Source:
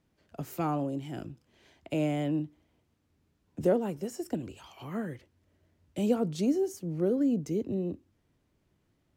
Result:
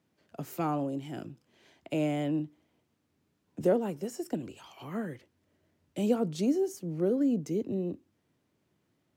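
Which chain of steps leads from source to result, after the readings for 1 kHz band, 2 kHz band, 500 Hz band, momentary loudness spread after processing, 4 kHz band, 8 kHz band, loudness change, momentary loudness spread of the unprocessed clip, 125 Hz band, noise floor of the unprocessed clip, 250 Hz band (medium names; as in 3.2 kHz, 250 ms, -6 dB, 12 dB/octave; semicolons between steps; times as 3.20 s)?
0.0 dB, 0.0 dB, 0.0 dB, 17 LU, 0.0 dB, 0.0 dB, 0.0 dB, 16 LU, -1.5 dB, -74 dBFS, -0.5 dB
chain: high-pass 130 Hz 12 dB/octave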